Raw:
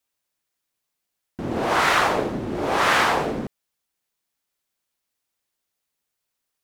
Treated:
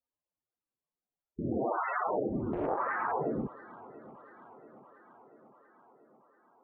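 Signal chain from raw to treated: local Wiener filter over 15 samples; peak limiter -14.5 dBFS, peak gain reduction 7 dB; loudest bins only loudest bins 16; on a send: tape echo 686 ms, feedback 68%, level -18 dB, low-pass 3.2 kHz; 2.53–3.12 s: on the sum: loudspeaker Doppler distortion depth 0.59 ms; trim -4.5 dB

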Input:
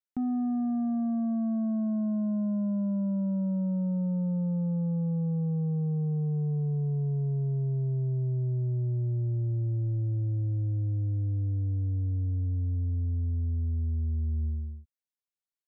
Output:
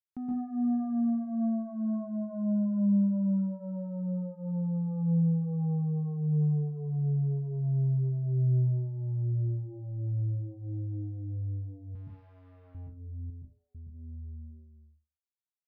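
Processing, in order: fade out at the end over 4.84 s; 5.41–6.21 s: dynamic bell 1.1 kHz, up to +3 dB, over -54 dBFS, Q 1.1; 11.95–12.75 s: valve stage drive 50 dB, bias 0.55; 13.30–13.75 s: steep high-pass 560 Hz 36 dB/octave; reverberation RT60 0.35 s, pre-delay 118 ms, DRR -3 dB; trim -7.5 dB

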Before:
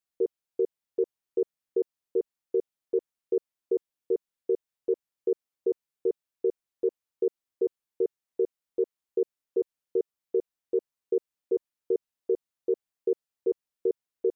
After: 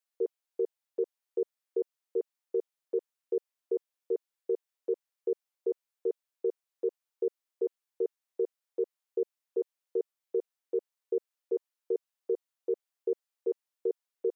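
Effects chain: high-pass 460 Hz 12 dB/octave

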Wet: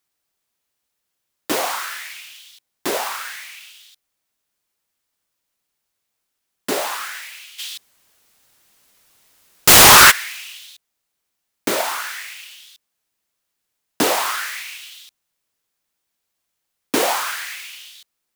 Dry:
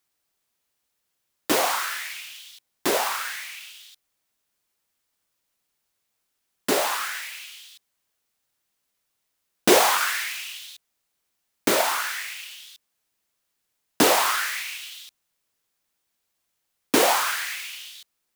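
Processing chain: 7.58–10.10 s: sine folder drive 12 dB -> 18 dB, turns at -3.5 dBFS

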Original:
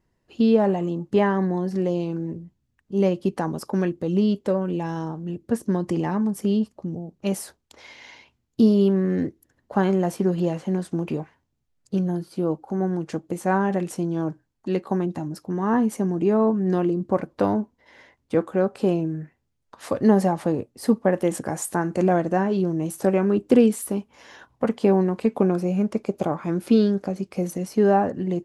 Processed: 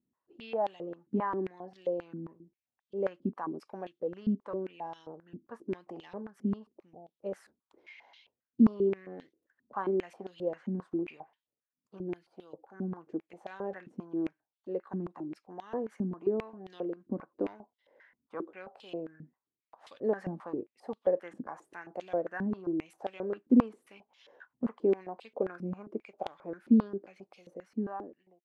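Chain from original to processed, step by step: fade out at the end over 1.19 s; step-sequenced band-pass 7.5 Hz 240–3400 Hz; trim -2.5 dB

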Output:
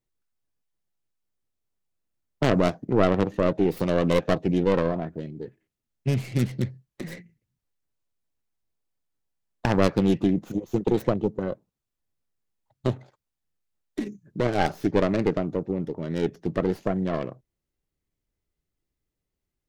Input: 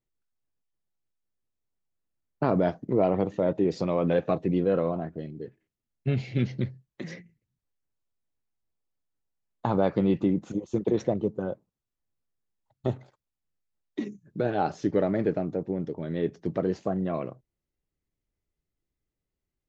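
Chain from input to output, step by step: tracing distortion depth 0.49 ms; trim +2 dB

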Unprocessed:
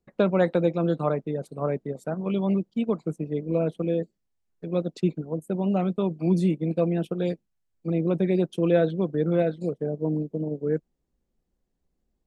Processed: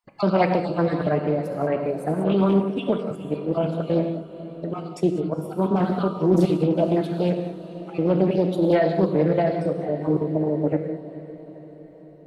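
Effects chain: random holes in the spectrogram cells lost 30%; in parallel at -2 dB: peak limiter -19.5 dBFS, peak gain reduction 10 dB; on the sum: gated-style reverb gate 220 ms flat, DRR 4.5 dB; formant shift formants +3 st; on a send: echo that smears into a reverb 477 ms, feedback 58%, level -15 dB; on the sum: loudspeaker Doppler distortion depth 0.31 ms

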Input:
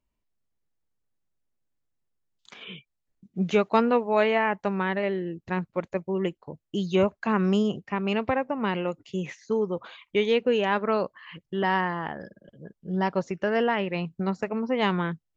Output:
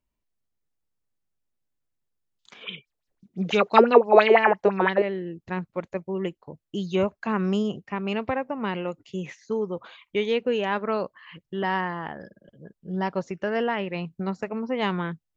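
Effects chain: 2.63–5.02 s: sweeping bell 5.9 Hz 360–5700 Hz +17 dB; trim -1.5 dB

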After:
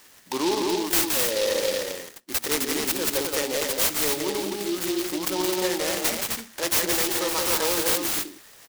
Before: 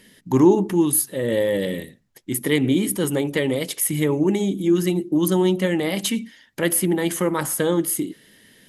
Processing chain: high-pass 600 Hz 12 dB/octave; treble shelf 10 kHz +11.5 dB; saturation -16 dBFS, distortion -9 dB; on a send: loudspeakers at several distances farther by 59 m -4 dB, 89 m -4 dB; on the sum: delay time shaken by noise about 3.8 kHz, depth 0.11 ms

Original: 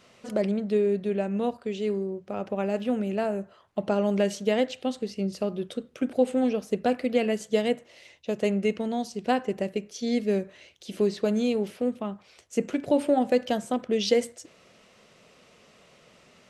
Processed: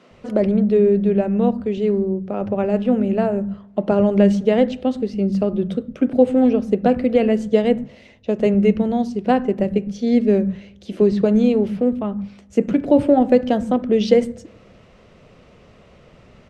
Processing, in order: RIAA curve playback; bands offset in time highs, lows 110 ms, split 190 Hz; on a send at -23.5 dB: reverberation RT60 1.1 s, pre-delay 3 ms; on the sum: trim +5.5 dB

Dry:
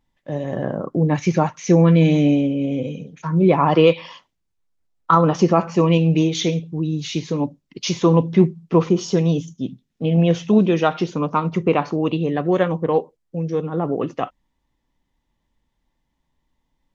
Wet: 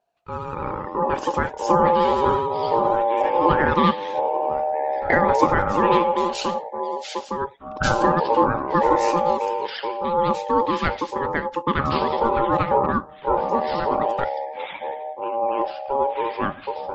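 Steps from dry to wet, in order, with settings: ever faster or slower copies 172 ms, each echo -7 st, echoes 2; vibrato 12 Hz 100 cents; ring modulator 690 Hz; trim -2 dB

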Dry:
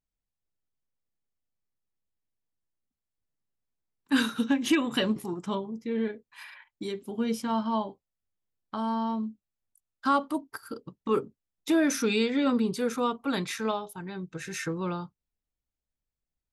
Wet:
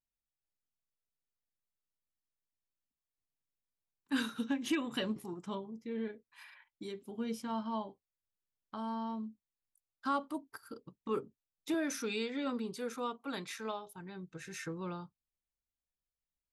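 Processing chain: 11.74–13.87 s: high-pass 260 Hz 6 dB/octave; trim -9 dB

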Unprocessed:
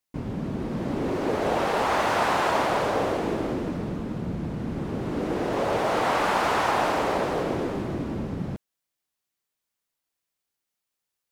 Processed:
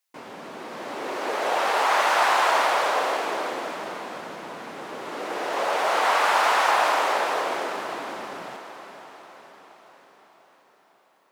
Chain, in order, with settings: high-pass 740 Hz 12 dB/octave; on a send: echo that smears into a reverb 487 ms, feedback 57%, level -11 dB; on the sum: trim +5 dB

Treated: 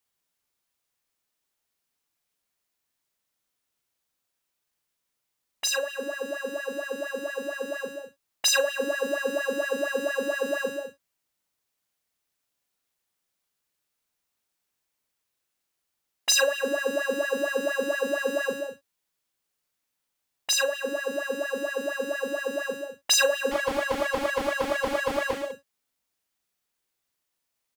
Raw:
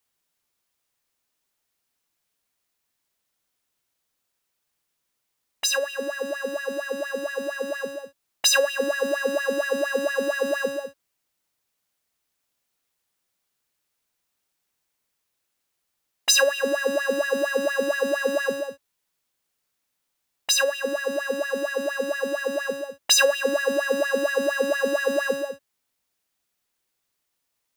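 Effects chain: doubling 39 ms -9 dB; 23.51–25.52 s: loudspeaker Doppler distortion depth 0.7 ms; trim -3.5 dB

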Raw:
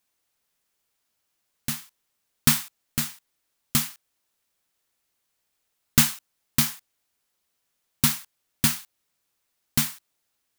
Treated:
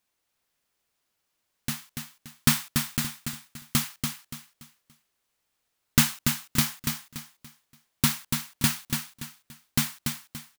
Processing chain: treble shelf 5.4 kHz -4.5 dB; on a send: feedback delay 287 ms, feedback 32%, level -5.5 dB

